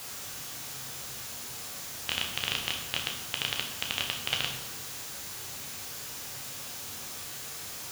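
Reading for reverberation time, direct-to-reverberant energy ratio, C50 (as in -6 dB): 1.1 s, 1.0 dB, 6.0 dB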